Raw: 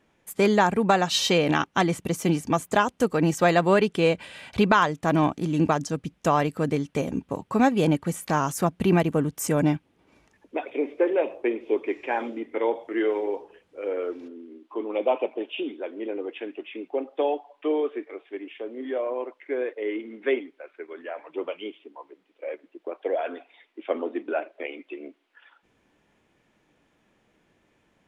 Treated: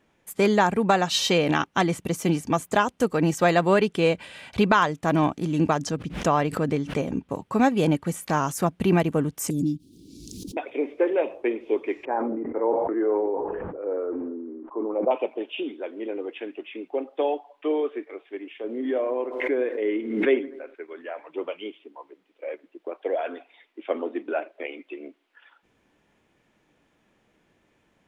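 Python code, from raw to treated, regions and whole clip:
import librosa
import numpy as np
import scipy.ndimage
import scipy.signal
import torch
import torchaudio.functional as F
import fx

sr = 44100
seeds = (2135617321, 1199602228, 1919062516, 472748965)

y = fx.chain(x, sr, fx.high_shelf(hz=7400.0, db=-10.0),
    fx.pre_swell(db_per_s=110.0), at=(5.86, 7.29))
y = fx.chain(y, sr, fx.ellip_bandstop(low_hz=310.0, high_hz=4300.0, order=3, stop_db=50),
    fx.low_shelf(hz=200.0, db=-7.0),
    fx.pre_swell(db_per_s=30.0), at=(9.5, 10.57))
y = fx.chain(y, sr, fx.lowpass(hz=1300.0, slope=24),
    fx.sustainer(db_per_s=22.0), at=(12.05, 15.11))
y = fx.chain(y, sr, fx.low_shelf(hz=280.0, db=10.0),
    fx.echo_bbd(ms=81, stages=1024, feedback_pct=57, wet_db=-18),
    fx.pre_swell(db_per_s=59.0), at=(18.64, 20.75))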